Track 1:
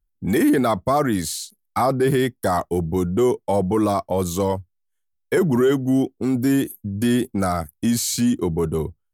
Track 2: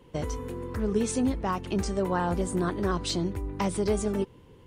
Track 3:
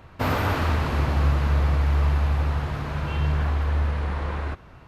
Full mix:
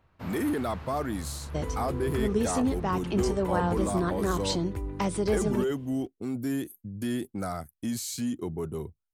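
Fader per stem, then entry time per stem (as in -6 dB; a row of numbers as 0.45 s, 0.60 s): -11.5 dB, -0.5 dB, -18.0 dB; 0.00 s, 1.40 s, 0.00 s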